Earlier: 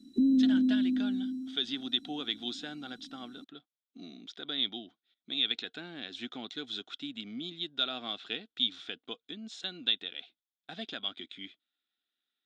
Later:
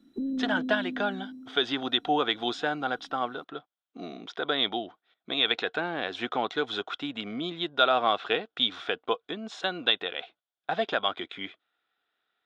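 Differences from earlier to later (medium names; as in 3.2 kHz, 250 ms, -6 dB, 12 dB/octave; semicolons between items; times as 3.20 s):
speech +11.5 dB; master: add graphic EQ 250/500/1000/4000/8000 Hz -9/+7/+10/-8/-10 dB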